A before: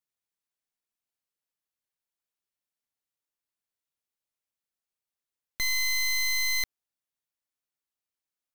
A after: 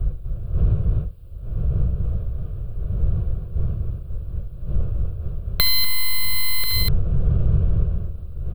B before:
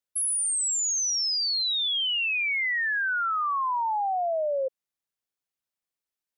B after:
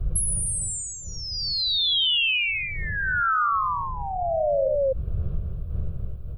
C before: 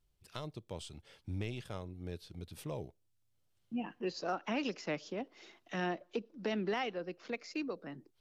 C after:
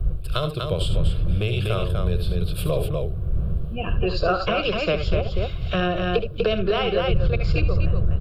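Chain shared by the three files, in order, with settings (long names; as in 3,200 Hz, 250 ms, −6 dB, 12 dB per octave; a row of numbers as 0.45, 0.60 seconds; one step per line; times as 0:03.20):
wind on the microphone 82 Hz −39 dBFS
on a send: multi-tap delay 69/78/245 ms −11.5/−13.5/−5 dB
on the sum: dynamic equaliser 170 Hz, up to +5 dB, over −54 dBFS, Q 2.7
brickwall limiter −21.5 dBFS
downward compressor 5 to 1, threshold −34 dBFS
phaser with its sweep stopped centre 1,300 Hz, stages 8
loudness normalisation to −24 LKFS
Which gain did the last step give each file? +21.5, +14.5, +20.0 decibels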